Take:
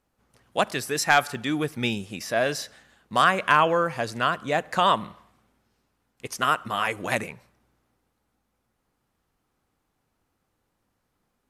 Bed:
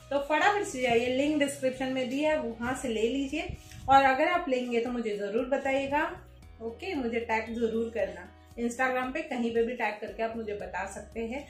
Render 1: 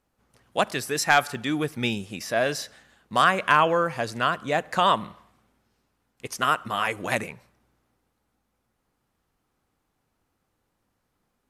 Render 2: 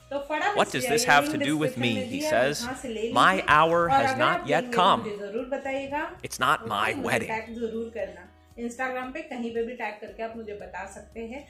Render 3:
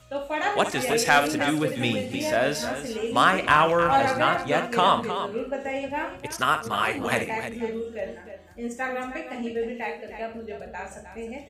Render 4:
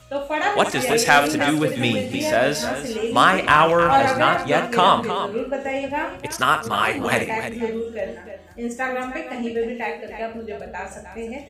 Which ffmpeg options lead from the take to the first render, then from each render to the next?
-af anull
-filter_complex "[1:a]volume=0.794[s0];[0:a][s0]amix=inputs=2:normalize=0"
-af "aecho=1:1:59|310:0.282|0.316"
-af "volume=1.68,alimiter=limit=0.794:level=0:latency=1"

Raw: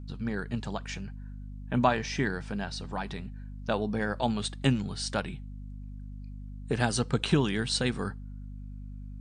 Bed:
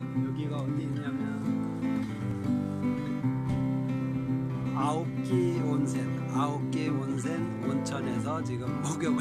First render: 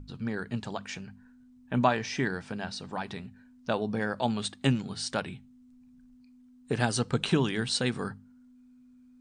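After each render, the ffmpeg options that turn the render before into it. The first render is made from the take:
-af "bandreject=f=50:t=h:w=6,bandreject=f=100:t=h:w=6,bandreject=f=150:t=h:w=6,bandreject=f=200:t=h:w=6"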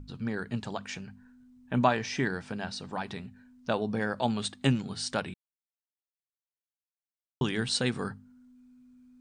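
-filter_complex "[0:a]asplit=3[s0][s1][s2];[s0]atrim=end=5.34,asetpts=PTS-STARTPTS,afade=t=out:st=5.336:d=0.004:c=hsin[s3];[s1]atrim=start=5.34:end=7.41,asetpts=PTS-STARTPTS,volume=0[s4];[s2]atrim=start=7.41,asetpts=PTS-STARTPTS,afade=t=in:d=0.004:c=hsin[s5];[s3][s4][s5]concat=n=3:v=0:a=1"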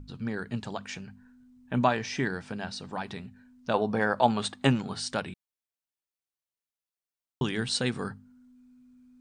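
-filter_complex "[0:a]asettb=1/sr,asplit=3[s0][s1][s2];[s0]atrim=end=3.744[s3];[s1]atrim=start=3.74:end=5,asetpts=PTS-STARTPTS,afade=t=in:d=0.004:c=qsin,afade=t=out:st=1.256:d=0.004:c=qsin,equalizer=f=910:w=0.61:g=8.5[s4];[s2]atrim=start=4.996[s5];[s3][s4]acrossfade=d=0.004:c1=hsin:c2=qsin[s6];[s6][s5]acrossfade=d=0.004:c1=qsin:c2=hsin"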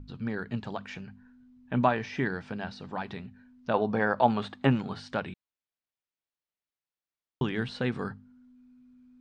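-filter_complex "[0:a]acrossover=split=2600[s0][s1];[s1]acompressor=threshold=0.00794:ratio=4:attack=1:release=60[s2];[s0][s2]amix=inputs=2:normalize=0,lowpass=4200"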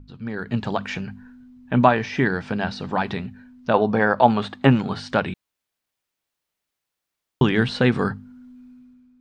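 -af "dynaudnorm=f=110:g=9:m=3.98"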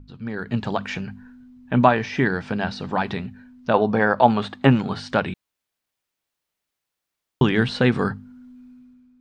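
-af anull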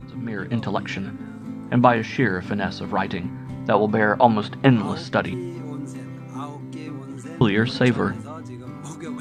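-filter_complex "[1:a]volume=0.631[s0];[0:a][s0]amix=inputs=2:normalize=0"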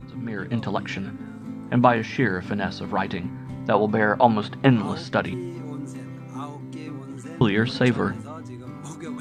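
-af "volume=0.841"

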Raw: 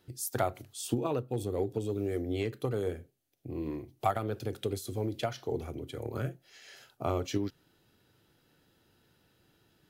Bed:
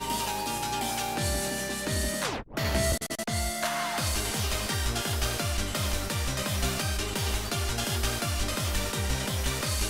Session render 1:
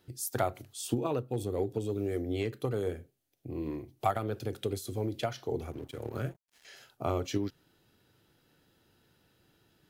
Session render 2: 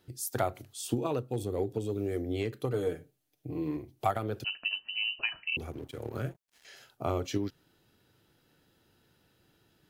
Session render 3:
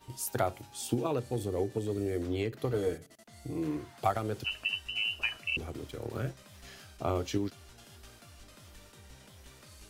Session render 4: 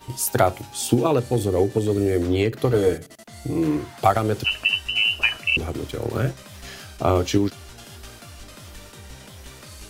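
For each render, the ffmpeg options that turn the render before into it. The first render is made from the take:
-filter_complex "[0:a]asettb=1/sr,asplit=3[s0][s1][s2];[s0]atrim=end=5.714[s3];[s1]atrim=start=5.71:end=6.65,asetpts=PTS-STARTPTS,afade=t=in:d=0.004:c=qsin,afade=t=out:st=0.936:d=0.004:c=qsin,aeval=exprs='sgn(val(0))*max(abs(val(0))-0.00224,0)':c=same[s4];[s2]atrim=start=6.646[s5];[s3][s4]acrossfade=d=0.004:c1=hsin:c2=qsin[s6];[s6][s5]acrossfade=d=0.004:c1=qsin:c2=hsin"
-filter_complex "[0:a]asettb=1/sr,asplit=3[s0][s1][s2];[s0]atrim=end=0.944[s3];[s1]atrim=start=0.94:end=1.39,asetpts=PTS-STARTPTS,afade=t=in:d=0.004:c=qsin,afade=t=out:st=0.446:d=0.004:c=qsin,equalizer=f=6900:t=o:w=1.7:g=4[s4];[s2]atrim=start=1.386[s5];[s3][s4]acrossfade=d=0.004:c1=hsin:c2=qsin[s6];[s6][s5]acrossfade=d=0.004:c1=qsin:c2=hsin,asettb=1/sr,asplit=3[s7][s8][s9];[s7]atrim=end=2.734[s10];[s8]atrim=start=2.73:end=3.77,asetpts=PTS-STARTPTS,afade=t=in:d=0.004:c=qsin,afade=t=out:st=1.036:d=0.004:c=qsin,aecho=1:1:6.6:0.65,atrim=end_sample=45864[s11];[s9]atrim=start=3.766[s12];[s10][s11]acrossfade=d=0.004:c1=hsin:c2=qsin[s13];[s13][s12]acrossfade=d=0.004:c1=qsin:c2=hsin,asettb=1/sr,asplit=3[s14][s15][s16];[s14]atrim=end=4.444[s17];[s15]atrim=start=4.44:end=5.57,asetpts=PTS-STARTPTS,afade=t=in:d=0.004:c=qsin,afade=t=out:st=1.126:d=0.004:c=qsin,lowpass=f=2600:t=q:w=0.5098,lowpass=f=2600:t=q:w=0.6013,lowpass=f=2600:t=q:w=0.9,lowpass=f=2600:t=q:w=2.563,afreqshift=-3100[s18];[s16]atrim=start=5.566[s19];[s17][s18]acrossfade=d=0.004:c1=hsin:c2=qsin[s20];[s20][s19]acrossfade=d=0.004:c1=qsin:c2=hsin"
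-filter_complex "[1:a]volume=0.0596[s0];[0:a][s0]amix=inputs=2:normalize=0"
-af "volume=3.98,alimiter=limit=0.794:level=0:latency=1"

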